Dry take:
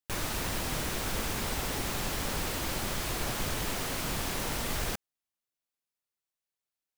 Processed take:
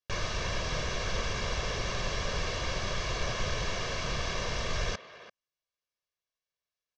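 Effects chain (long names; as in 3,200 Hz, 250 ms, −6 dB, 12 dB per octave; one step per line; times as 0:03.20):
elliptic low-pass filter 6,100 Hz, stop band 70 dB
comb filter 1.8 ms, depth 64%
far-end echo of a speakerphone 340 ms, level −13 dB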